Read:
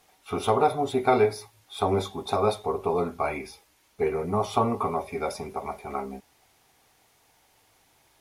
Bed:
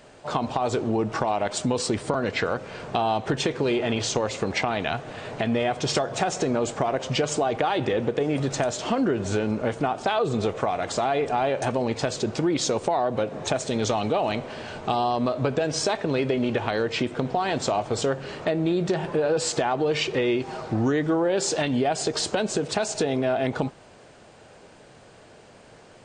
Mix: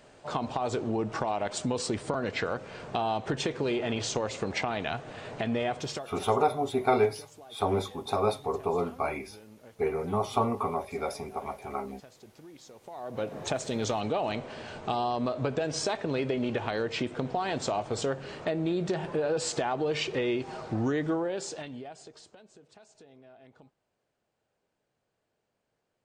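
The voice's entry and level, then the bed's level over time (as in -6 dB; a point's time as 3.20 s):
5.80 s, -3.0 dB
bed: 5.75 s -5.5 dB
6.37 s -26.5 dB
12.78 s -26.5 dB
13.25 s -5.5 dB
21.11 s -5.5 dB
22.44 s -30.5 dB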